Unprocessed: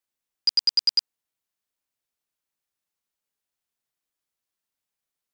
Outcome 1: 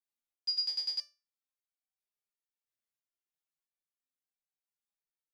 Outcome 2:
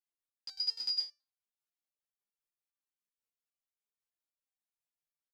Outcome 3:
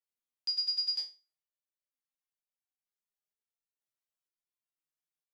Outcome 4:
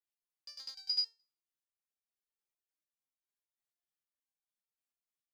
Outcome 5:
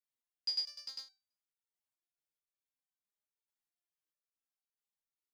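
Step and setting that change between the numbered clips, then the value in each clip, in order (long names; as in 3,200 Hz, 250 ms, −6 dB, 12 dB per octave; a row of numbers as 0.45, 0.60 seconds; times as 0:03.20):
step-sequenced resonator, speed: 3, 10, 2.1, 6.7, 4.6 Hertz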